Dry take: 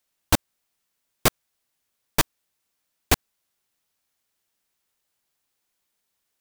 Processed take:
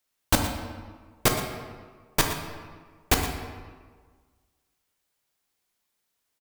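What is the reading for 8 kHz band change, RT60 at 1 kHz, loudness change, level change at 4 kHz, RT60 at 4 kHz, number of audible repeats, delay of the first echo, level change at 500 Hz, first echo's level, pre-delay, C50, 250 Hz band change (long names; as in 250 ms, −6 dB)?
−1.0 dB, 1.6 s, −2.0 dB, −0.5 dB, 1.0 s, 1, 118 ms, 0.0 dB, −13.0 dB, 10 ms, 4.5 dB, 0.0 dB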